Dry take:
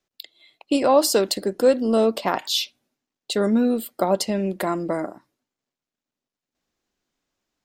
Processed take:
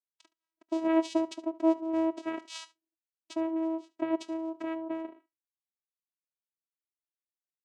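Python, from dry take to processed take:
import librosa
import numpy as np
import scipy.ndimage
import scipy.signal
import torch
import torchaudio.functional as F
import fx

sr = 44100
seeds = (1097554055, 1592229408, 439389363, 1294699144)

y = fx.noise_reduce_blind(x, sr, reduce_db=25)
y = fx.vocoder(y, sr, bands=4, carrier='saw', carrier_hz=324.0)
y = y + 10.0 ** (-19.5 / 20.0) * np.pad(y, (int(72 * sr / 1000.0), 0))[:len(y)]
y = F.gain(torch.from_numpy(y), -9.0).numpy()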